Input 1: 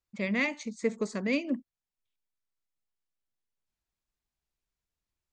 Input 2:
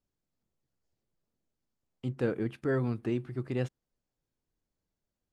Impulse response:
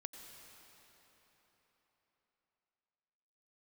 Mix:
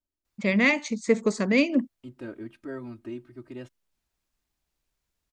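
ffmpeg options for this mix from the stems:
-filter_complex "[0:a]acontrast=70,adelay=250,volume=1.12[s0];[1:a]aecho=1:1:3.2:0.96,volume=0.335[s1];[s0][s1]amix=inputs=2:normalize=0"

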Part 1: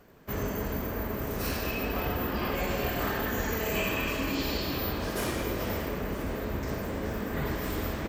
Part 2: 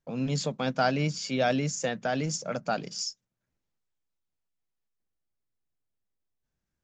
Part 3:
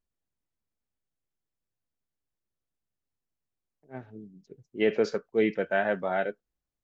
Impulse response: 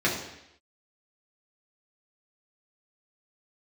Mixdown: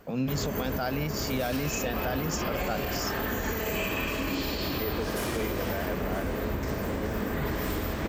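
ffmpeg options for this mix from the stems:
-filter_complex "[0:a]volume=1.41[s0];[1:a]volume=1.33[s1];[2:a]volume=0.422[s2];[s0][s1][s2]amix=inputs=3:normalize=0,alimiter=limit=0.0944:level=0:latency=1:release=101"

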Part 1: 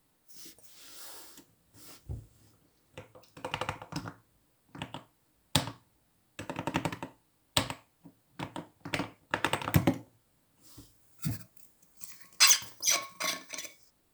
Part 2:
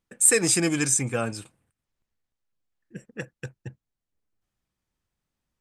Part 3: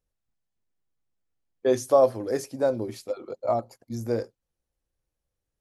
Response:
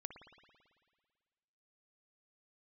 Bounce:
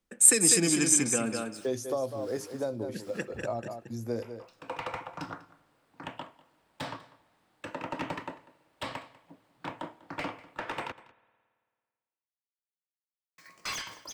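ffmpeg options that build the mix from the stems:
-filter_complex "[0:a]highshelf=f=9400:g=-5,alimiter=limit=0.188:level=0:latency=1:release=154,asplit=2[s0][s1];[s1]highpass=f=720:p=1,volume=12.6,asoftclip=type=tanh:threshold=0.188[s2];[s0][s2]amix=inputs=2:normalize=0,lowpass=f=1600:p=1,volume=0.501,adelay=1250,volume=0.398,asplit=3[s3][s4][s5];[s3]atrim=end=10.92,asetpts=PTS-STARTPTS,afade=t=out:st=10.916:d=0.004:c=hsin[s6];[s4]atrim=start=10.92:end=13.38,asetpts=PTS-STARTPTS,volume=0[s7];[s5]atrim=start=13.38,asetpts=PTS-STARTPTS,afade=t=in:d=0.004:c=hsin[s8];[s6][s7][s8]concat=n=3:v=0:a=1,asplit=3[s9][s10][s11];[s10]volume=0.282[s12];[s11]volume=0.112[s13];[1:a]lowshelf=f=160:t=q:w=1.5:g=-9.5,volume=0.75,asplit=3[s14][s15][s16];[s15]volume=0.596[s17];[s16]volume=0.596[s18];[2:a]volume=0.596,asplit=3[s19][s20][s21];[s20]volume=0.266[s22];[s21]apad=whole_len=678470[s23];[s9][s23]sidechaincompress=threshold=0.0158:ratio=8:attack=16:release=436[s24];[3:a]atrim=start_sample=2205[s25];[s12][s17]amix=inputs=2:normalize=0[s26];[s26][s25]afir=irnorm=-1:irlink=0[s27];[s13][s18][s22]amix=inputs=3:normalize=0,aecho=0:1:196:1[s28];[s24][s14][s19][s27][s28]amix=inputs=5:normalize=0,acrossover=split=260|3000[s29][s30][s31];[s30]acompressor=threshold=0.0316:ratio=6[s32];[s29][s32][s31]amix=inputs=3:normalize=0"

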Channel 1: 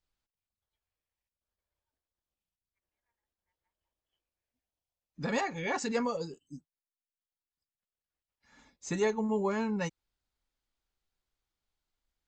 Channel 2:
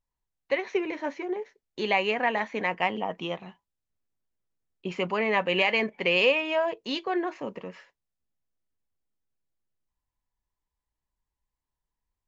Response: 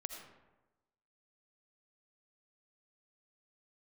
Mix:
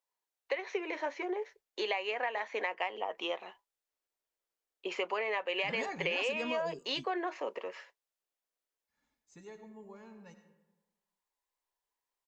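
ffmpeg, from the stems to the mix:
-filter_complex "[0:a]adelay=450,volume=1.06,asplit=2[s0][s1];[s1]volume=0.0708[s2];[1:a]highpass=f=390:w=0.5412,highpass=f=390:w=1.3066,volume=1.12,asplit=2[s3][s4];[s4]apad=whole_len=561101[s5];[s0][s5]sidechaingate=range=0.0316:threshold=0.00141:ratio=16:detection=peak[s6];[2:a]atrim=start_sample=2205[s7];[s2][s7]afir=irnorm=-1:irlink=0[s8];[s6][s3][s8]amix=inputs=3:normalize=0,acompressor=threshold=0.0282:ratio=6"

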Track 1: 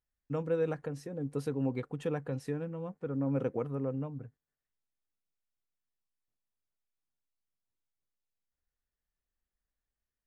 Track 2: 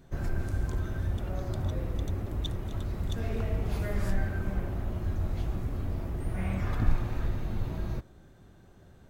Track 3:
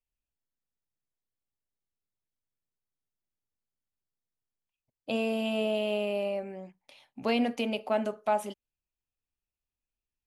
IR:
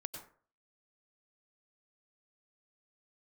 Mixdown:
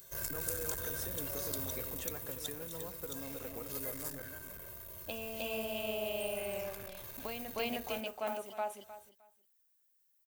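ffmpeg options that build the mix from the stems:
-filter_complex "[0:a]alimiter=level_in=1.68:limit=0.0631:level=0:latency=1:release=451,volume=0.596,volume=1.12,asplit=2[s0][s1];[s1]volume=0.266[s2];[1:a]highshelf=f=5100:g=10.5,aecho=1:1:1.9:0.77,asoftclip=type=tanh:threshold=0.0708,volume=0.596,afade=t=out:st=1.67:d=0.78:silence=0.398107,asplit=2[s3][s4];[s4]volume=0.106[s5];[2:a]lowpass=f=2300:p=1,dynaudnorm=f=300:g=13:m=3.55,volume=0.224,asplit=2[s6][s7];[s7]volume=0.562[s8];[s0][s6]amix=inputs=2:normalize=0,acrusher=bits=8:mode=log:mix=0:aa=0.000001,acompressor=threshold=0.0126:ratio=6,volume=1[s9];[s2][s5][s8]amix=inputs=3:normalize=0,aecho=0:1:308|616|924:1|0.19|0.0361[s10];[s3][s9][s10]amix=inputs=3:normalize=0,aemphasis=mode=production:type=riaa"

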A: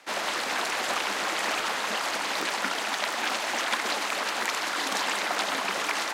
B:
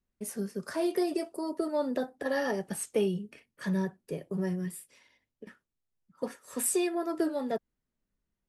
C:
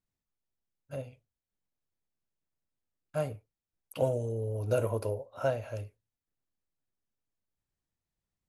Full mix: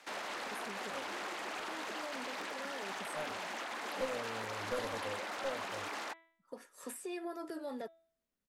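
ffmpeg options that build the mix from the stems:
-filter_complex "[0:a]volume=0.562[s0];[1:a]acompressor=threshold=0.0251:ratio=6,highpass=f=280:p=1,adelay=300,volume=0.891[s1];[2:a]aeval=exprs='clip(val(0),-1,0.0596)':c=same,aecho=1:1:3.8:0.9,volume=0.266,asplit=2[s2][s3];[s3]apad=whole_len=387284[s4];[s1][s4]sidechaincompress=threshold=0.002:ratio=8:attack=20:release=1220[s5];[s0][s5]amix=inputs=2:normalize=0,acrossover=split=990|3000[s6][s7][s8];[s6]acompressor=threshold=0.0126:ratio=4[s9];[s7]acompressor=threshold=0.01:ratio=4[s10];[s8]acompressor=threshold=0.00398:ratio=4[s11];[s9][s10][s11]amix=inputs=3:normalize=0,alimiter=level_in=2.82:limit=0.0631:level=0:latency=1:release=11,volume=0.355,volume=1[s12];[s2][s12]amix=inputs=2:normalize=0,equalizer=f=120:t=o:w=1:g=-2.5,bandreject=f=329.3:t=h:w=4,bandreject=f=658.6:t=h:w=4,bandreject=f=987.9:t=h:w=4,bandreject=f=1317.2:t=h:w=4,bandreject=f=1646.5:t=h:w=4,bandreject=f=1975.8:t=h:w=4,bandreject=f=2305.1:t=h:w=4,bandreject=f=2634.4:t=h:w=4,bandreject=f=2963.7:t=h:w=4,bandreject=f=3293:t=h:w=4,bandreject=f=3622.3:t=h:w=4,bandreject=f=3951.6:t=h:w=4"

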